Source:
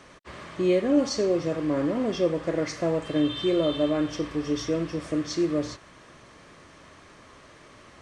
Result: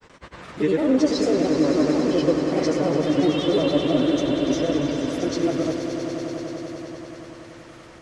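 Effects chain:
granular cloud, pitch spread up and down by 3 semitones
on a send: echo that builds up and dies away 96 ms, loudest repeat 5, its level −10.5 dB
on the sum: level +3 dB

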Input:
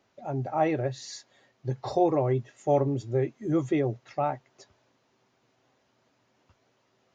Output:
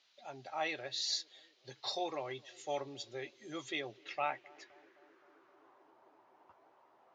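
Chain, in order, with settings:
feedback echo with a band-pass in the loop 260 ms, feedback 75%, band-pass 340 Hz, level −23 dB
band-pass filter sweep 3,900 Hz → 890 Hz, 0:03.70–0:05.95
level +10 dB

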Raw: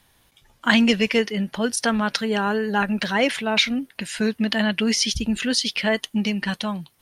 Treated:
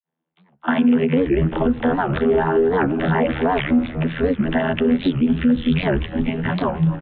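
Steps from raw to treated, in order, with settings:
noise gate −54 dBFS, range −29 dB
high-shelf EQ 2,400 Hz −12 dB
downward compressor, threshold −25 dBFS, peak gain reduction 10 dB
granular cloud 180 ms, grains 20 per second, spray 27 ms, pitch spread up and down by 0 semitones
channel vocoder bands 32, saw 81.1 Hz
echo with shifted repeats 245 ms, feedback 64%, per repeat −88 Hz, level −14 dB
on a send at −18 dB: convolution reverb RT60 0.80 s, pre-delay 3 ms
on the sum: downsampling to 8,000 Hz
boost into a limiter +27 dB
wow of a warped record 78 rpm, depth 250 cents
level −8.5 dB

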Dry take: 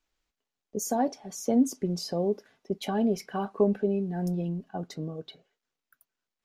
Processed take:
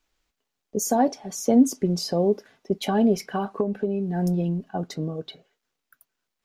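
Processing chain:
0:03.18–0:04.14: downward compressor 12 to 1, threshold −27 dBFS, peak gain reduction 10.5 dB
level +6 dB

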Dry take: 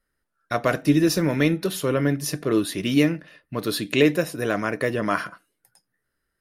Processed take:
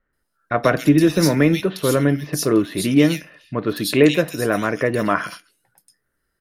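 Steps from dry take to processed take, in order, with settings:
multiband delay without the direct sound lows, highs 130 ms, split 2,700 Hz
0:00.63–0:01.60: multiband upward and downward compressor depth 40%
level +4.5 dB

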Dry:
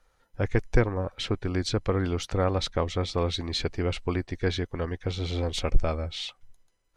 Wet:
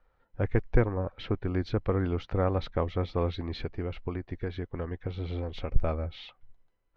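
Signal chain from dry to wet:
high-shelf EQ 3,800 Hz −7.5 dB
0:03.63–0:05.76: downward compressor, threshold −28 dBFS, peak gain reduction 13.5 dB
high-frequency loss of the air 280 metres
level −1 dB

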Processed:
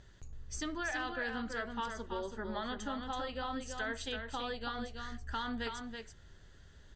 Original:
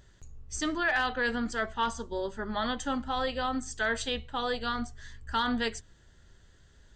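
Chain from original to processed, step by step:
low-pass filter 6,300 Hz 12 dB per octave
downward compressor 2.5 to 1, threshold −40 dBFS, peak gain reduction 10.5 dB
single-tap delay 329 ms −6 dB

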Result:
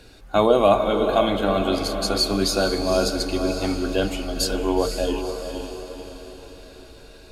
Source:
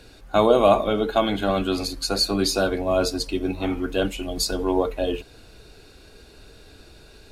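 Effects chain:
feedback delay with all-pass diffusion 495 ms, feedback 49%, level −7 dB

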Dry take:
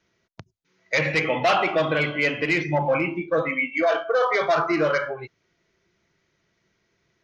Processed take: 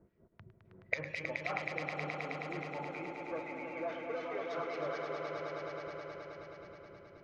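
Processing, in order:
low-pass that shuts in the quiet parts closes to 540 Hz, open at −22 dBFS
two-band tremolo in antiphase 3.9 Hz, depth 100%, crossover 1,700 Hz
gate with flip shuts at −33 dBFS, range −29 dB
time-frequency box erased 0:01.64–0:02.55, 560–6,300 Hz
on a send: echo that builds up and dies away 106 ms, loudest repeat 5, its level −6.5 dB
on the sum: level +12 dB

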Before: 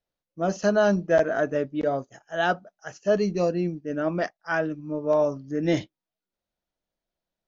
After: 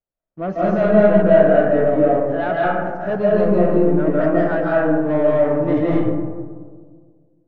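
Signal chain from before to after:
parametric band 3,100 Hz −3.5 dB
leveller curve on the samples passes 2
in parallel at −4 dB: soft clipping −27 dBFS, distortion −7 dB
on the sum: high-frequency loss of the air 490 metres
comb and all-pass reverb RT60 1.7 s, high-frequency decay 0.3×, pre-delay 120 ms, DRR −6.5 dB
level −5.5 dB

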